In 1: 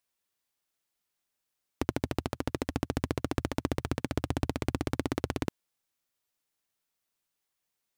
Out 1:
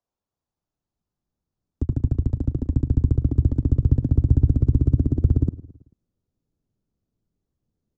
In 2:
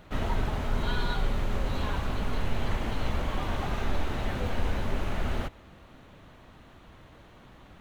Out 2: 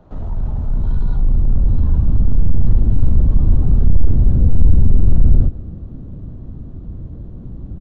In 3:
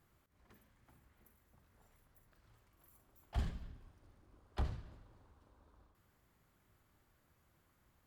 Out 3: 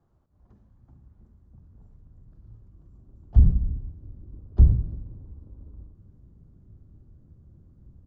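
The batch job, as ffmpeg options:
-filter_complex "[0:a]aresample=16000,asoftclip=type=tanh:threshold=-27dB,aresample=44100,firequalizer=gain_entry='entry(740,0);entry(2100,-20);entry(4400,-15)':delay=0.05:min_phase=1,acrossover=split=180[a][b];[b]acompressor=threshold=-42dB:ratio=2.5[c];[a][c]amix=inputs=2:normalize=0,asubboost=boost=12:cutoff=240,aecho=1:1:110|220|330|440:0.119|0.0594|0.0297|0.0149,volume=4.5dB"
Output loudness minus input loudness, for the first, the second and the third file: +12.0, +15.0, +21.0 LU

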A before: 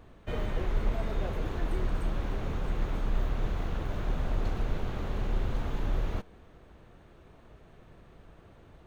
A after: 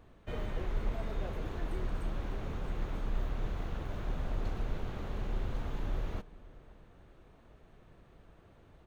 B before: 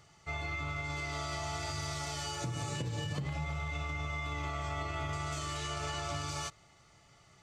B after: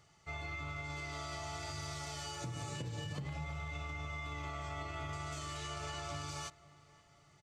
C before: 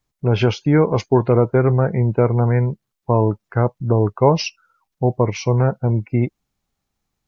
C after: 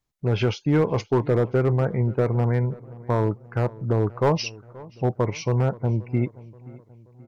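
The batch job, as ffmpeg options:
-filter_complex "[0:a]volume=7.5dB,asoftclip=hard,volume=-7.5dB,asplit=2[a][b];[b]adelay=529,lowpass=f=2.1k:p=1,volume=-20.5dB,asplit=2[c][d];[d]adelay=529,lowpass=f=2.1k:p=1,volume=0.52,asplit=2[e][f];[f]adelay=529,lowpass=f=2.1k:p=1,volume=0.52,asplit=2[g][h];[h]adelay=529,lowpass=f=2.1k:p=1,volume=0.52[i];[a][c][e][g][i]amix=inputs=5:normalize=0,volume=-5dB"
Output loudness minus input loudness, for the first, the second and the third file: -5.0, -5.0, -5.5 LU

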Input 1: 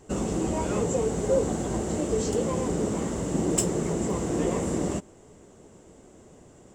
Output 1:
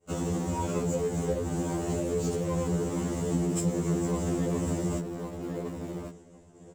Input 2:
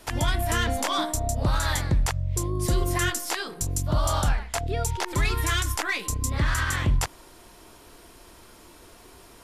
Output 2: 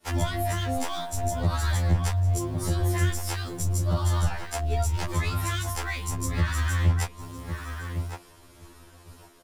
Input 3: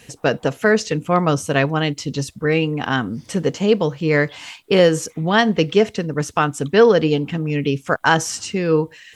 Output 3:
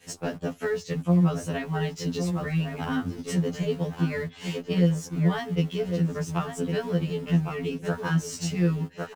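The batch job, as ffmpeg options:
-filter_complex "[0:a]asplit=2[a][b];[b]adelay=1106,lowpass=f=1.5k:p=1,volume=-9dB,asplit=2[c][d];[d]adelay=1106,lowpass=f=1.5k:p=1,volume=0.18,asplit=2[e][f];[f]adelay=1106,lowpass=f=1.5k:p=1,volume=0.18[g];[a][c][e][g]amix=inputs=4:normalize=0,acrossover=split=190[h][i];[i]acompressor=threshold=-31dB:ratio=6[j];[h][j]amix=inputs=2:normalize=0,asplit=2[k][l];[l]aeval=exprs='val(0)*gte(abs(val(0)),0.0224)':c=same,volume=-7dB[m];[k][m]amix=inputs=2:normalize=0,agate=range=-33dB:threshold=-44dB:ratio=3:detection=peak,afftfilt=real='re*2*eq(mod(b,4),0)':imag='im*2*eq(mod(b,4),0)':win_size=2048:overlap=0.75"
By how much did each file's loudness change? -3.0, -1.5, -9.0 LU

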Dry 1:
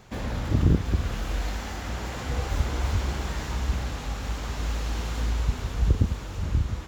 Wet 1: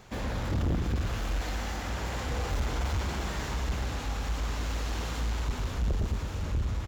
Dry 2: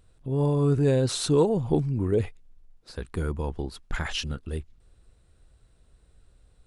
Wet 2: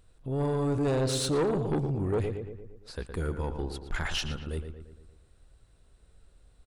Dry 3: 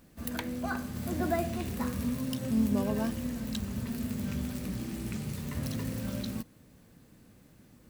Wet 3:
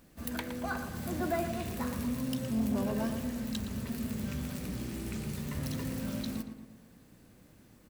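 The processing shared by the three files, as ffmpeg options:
-filter_complex "[0:a]asplit=2[a][b];[b]adelay=115,lowpass=f=2.6k:p=1,volume=-8.5dB,asplit=2[c][d];[d]adelay=115,lowpass=f=2.6k:p=1,volume=0.54,asplit=2[e][f];[f]adelay=115,lowpass=f=2.6k:p=1,volume=0.54,asplit=2[g][h];[h]adelay=115,lowpass=f=2.6k:p=1,volume=0.54,asplit=2[i][j];[j]adelay=115,lowpass=f=2.6k:p=1,volume=0.54,asplit=2[k][l];[l]adelay=115,lowpass=f=2.6k:p=1,volume=0.54[m];[a][c][e][g][i][k][m]amix=inputs=7:normalize=0,asoftclip=type=tanh:threshold=-21.5dB,equalizer=f=130:w=0.53:g=-2.5"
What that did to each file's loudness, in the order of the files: -4.0, -4.0, -2.0 LU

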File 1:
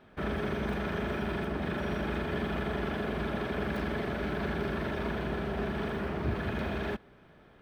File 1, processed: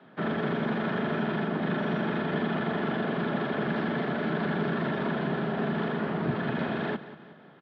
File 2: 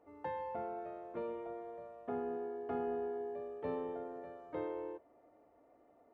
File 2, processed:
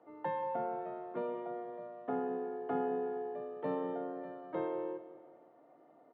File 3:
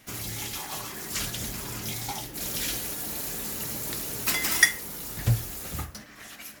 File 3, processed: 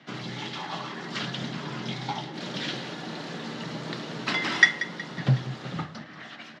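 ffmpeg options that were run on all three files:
-af "highpass=f=130:w=0.5412,highpass=f=130:w=1.3066,equalizer=f=140:t=q:w=4:g=6,equalizer=f=430:t=q:w=4:g=-3,equalizer=f=2.4k:t=q:w=4:g=-6,lowpass=f=3.9k:w=0.5412,lowpass=f=3.9k:w=1.3066,aecho=1:1:184|368|552|736:0.188|0.0848|0.0381|0.0172,afreqshift=13,volume=4.5dB"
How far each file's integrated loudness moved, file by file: +4.0, +3.0, -0.5 LU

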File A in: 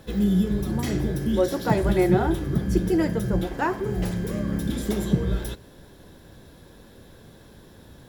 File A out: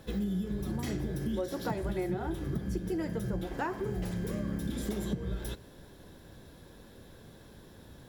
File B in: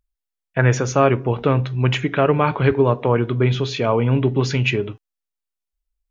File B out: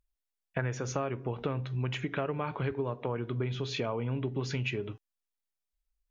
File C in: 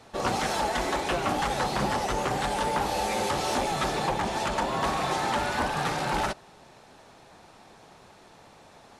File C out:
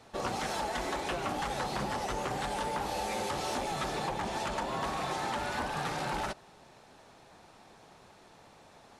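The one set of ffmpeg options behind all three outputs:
-af "acompressor=threshold=-26dB:ratio=6,volume=-4dB"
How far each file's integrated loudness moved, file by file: -10.5, -15.0, -6.5 LU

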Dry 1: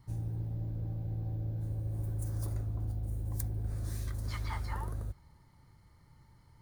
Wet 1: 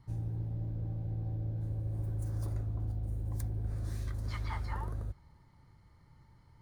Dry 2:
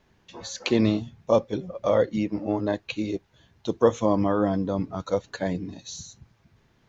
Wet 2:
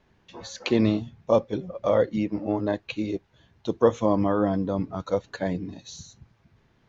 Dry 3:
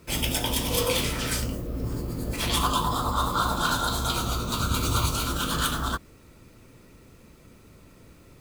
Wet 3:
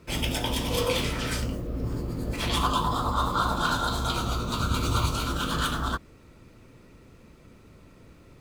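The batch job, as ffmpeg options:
-af "highshelf=f=7.2k:g=-11.5"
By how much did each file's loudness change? 0.0, 0.0, -1.5 LU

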